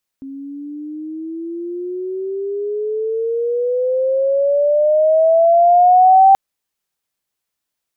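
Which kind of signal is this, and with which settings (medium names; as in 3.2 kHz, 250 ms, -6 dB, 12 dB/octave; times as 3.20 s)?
gliding synth tone sine, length 6.13 s, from 269 Hz, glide +18.5 st, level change +23 dB, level -5 dB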